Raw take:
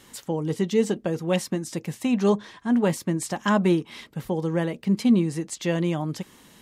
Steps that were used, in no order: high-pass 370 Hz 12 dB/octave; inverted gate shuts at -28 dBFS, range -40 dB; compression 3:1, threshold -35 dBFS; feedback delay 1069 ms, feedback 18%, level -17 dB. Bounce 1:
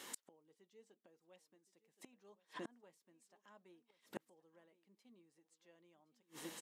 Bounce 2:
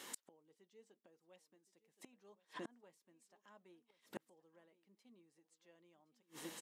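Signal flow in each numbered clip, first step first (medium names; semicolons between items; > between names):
feedback delay > inverted gate > high-pass > compression; feedback delay > inverted gate > compression > high-pass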